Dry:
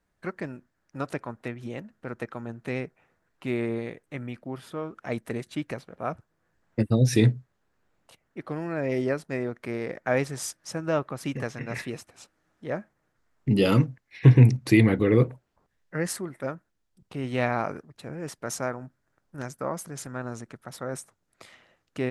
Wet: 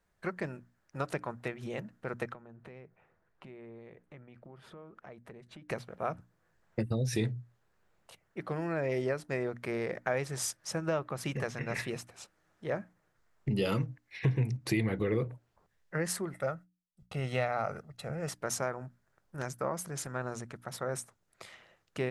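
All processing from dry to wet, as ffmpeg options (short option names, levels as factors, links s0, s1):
-filter_complex "[0:a]asettb=1/sr,asplit=3[s0][s1][s2];[s0]atrim=end=2.334[s3];[s1]atrim=start=2.33:end=5.69,asetpts=PTS-STARTPTS,afade=t=in:d=0.004:c=qsin,afade=t=out:st=3.356:d=0.004:c=qsin,lowpass=f=1600:p=1,acompressor=threshold=0.00447:ratio=4:attack=3.2:release=140:knee=1:detection=peak[s4];[s2]atrim=start=5.686[s5];[s3][s4]acrossfade=d=0.004:c1=hsin:c2=qsin[s6];[s6][s5]acrossfade=d=0.004:c1=qsin:c2=hsin,asettb=1/sr,asplit=3[s7][s8][s9];[s7]atrim=end=16.334[s10];[s8]atrim=start=16.33:end=18.31,asetpts=PTS-STARTPTS,afade=t=in:d=0.004:c=qsin,afade=t=out:st=1.976:d=0.004:c=qsin,agate=range=0.0224:threshold=0.00126:ratio=3:release=100:detection=peak,aecho=1:1:1.5:0.53,atrim=end_sample=87318[s11];[s9]atrim=start=18.306[s12];[s10][s11]acrossfade=d=0.004:c1=hsin:c2=qsin[s13];[s13][s12]acrossfade=d=0.004:c1=qsin:c2=hsin,equalizer=f=270:t=o:w=0.3:g=-9,acompressor=threshold=0.0355:ratio=3,bandreject=f=60:t=h:w=6,bandreject=f=120:t=h:w=6,bandreject=f=180:t=h:w=6,bandreject=f=240:t=h:w=6,bandreject=f=300:t=h:w=6"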